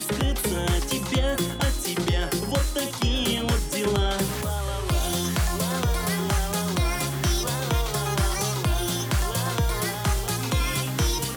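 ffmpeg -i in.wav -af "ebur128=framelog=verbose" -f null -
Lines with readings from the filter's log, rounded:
Integrated loudness:
  I:         -25.2 LUFS
  Threshold: -35.2 LUFS
Loudness range:
  LRA:         0.4 LU
  Threshold: -45.2 LUFS
  LRA low:   -25.4 LUFS
  LRA high:  -25.0 LUFS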